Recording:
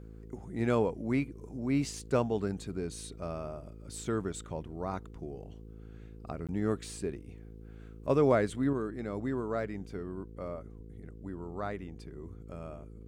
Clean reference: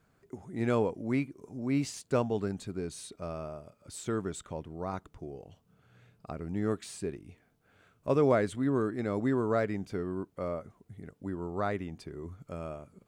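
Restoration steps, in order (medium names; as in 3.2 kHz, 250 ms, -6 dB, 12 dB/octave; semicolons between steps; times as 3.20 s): de-hum 54.5 Hz, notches 9; 10.75–10.87 s: high-pass 140 Hz 24 dB/octave; interpolate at 6.47 s, 17 ms; trim 0 dB, from 8.73 s +5 dB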